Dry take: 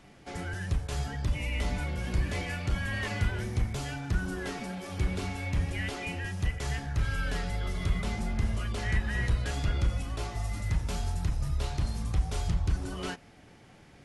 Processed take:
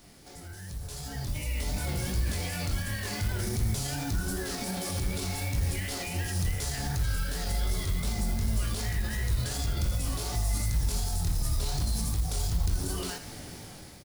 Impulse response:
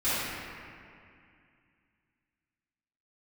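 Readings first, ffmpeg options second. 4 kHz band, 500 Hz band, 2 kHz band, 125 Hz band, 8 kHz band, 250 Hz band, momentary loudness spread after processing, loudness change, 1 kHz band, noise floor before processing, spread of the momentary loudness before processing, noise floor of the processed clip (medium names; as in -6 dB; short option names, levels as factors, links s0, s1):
+4.5 dB, -0.5 dB, -3.0 dB, +0.5 dB, +10.5 dB, 0.0 dB, 8 LU, +1.0 dB, -1.0 dB, -55 dBFS, 5 LU, -46 dBFS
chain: -filter_complex "[0:a]bass=f=250:g=-6,treble=f=4000:g=7,flanger=delay=18:depth=6.2:speed=2.7,acompressor=threshold=0.00794:ratio=6,alimiter=level_in=9.44:limit=0.0631:level=0:latency=1:release=52,volume=0.106,dynaudnorm=f=480:g=5:m=4.73,acrusher=bits=4:mode=log:mix=0:aa=0.000001,lowshelf=f=240:g=11.5,aexciter=amount=3:drive=1.3:freq=3900,asplit=2[s0][s1];[s1]aecho=0:1:81:0.282[s2];[s0][s2]amix=inputs=2:normalize=0"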